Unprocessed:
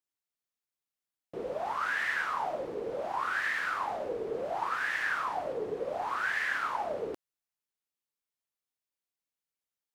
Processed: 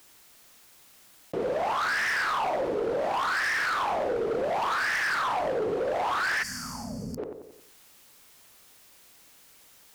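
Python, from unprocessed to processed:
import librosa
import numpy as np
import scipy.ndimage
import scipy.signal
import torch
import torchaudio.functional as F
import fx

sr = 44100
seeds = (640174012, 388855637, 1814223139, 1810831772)

y = fx.echo_filtered(x, sr, ms=91, feedback_pct=30, hz=1500.0, wet_db=-8.5)
y = fx.spec_box(y, sr, start_s=6.43, length_s=0.75, low_hz=260.0, high_hz=4400.0, gain_db=-27)
y = np.clip(y, -10.0 ** (-32.0 / 20.0), 10.0 ** (-32.0 / 20.0))
y = fx.env_flatten(y, sr, amount_pct=50)
y = y * librosa.db_to_amplitude(7.0)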